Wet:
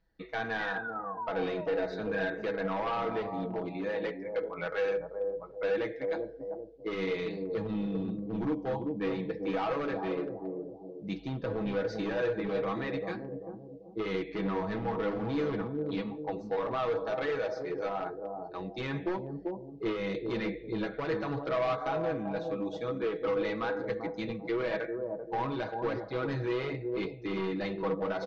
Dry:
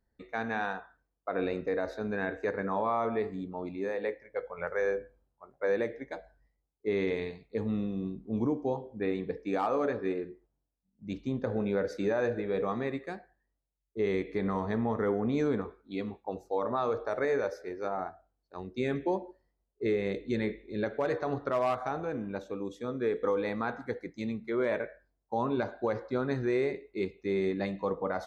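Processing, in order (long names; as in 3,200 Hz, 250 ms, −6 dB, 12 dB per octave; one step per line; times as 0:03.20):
sound drawn into the spectrogram fall, 0:00.59–0:02.02, 390–2,000 Hz −42 dBFS
high-shelf EQ 2,200 Hz +6.5 dB
on a send: bucket-brigade delay 390 ms, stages 2,048, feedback 34%, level −7 dB
on the sum: flanger 0.92 Hz, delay 1.2 ms, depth 8.3 ms, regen −62%
in parallel at 0 dB: downward compressor 6 to 1, threshold −43 dBFS, peak gain reduction 15.5 dB
on the sum: hard clipping −29 dBFS, distortion −12 dB
low-pass filter 4,800 Hz 24 dB per octave
comb filter 6.2 ms, depth 68%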